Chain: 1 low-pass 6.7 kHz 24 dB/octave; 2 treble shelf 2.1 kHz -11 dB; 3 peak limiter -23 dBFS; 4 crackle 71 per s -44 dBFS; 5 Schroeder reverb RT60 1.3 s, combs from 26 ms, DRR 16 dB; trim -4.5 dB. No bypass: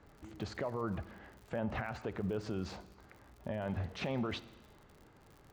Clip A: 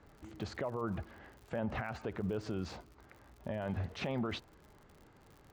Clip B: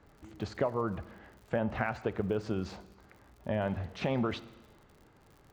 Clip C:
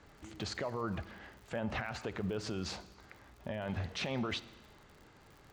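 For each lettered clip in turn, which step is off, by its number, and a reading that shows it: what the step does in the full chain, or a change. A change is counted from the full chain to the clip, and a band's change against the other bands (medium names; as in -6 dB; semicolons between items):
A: 5, momentary loudness spread change -3 LU; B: 3, mean gain reduction 1.5 dB; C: 2, 8 kHz band +9.0 dB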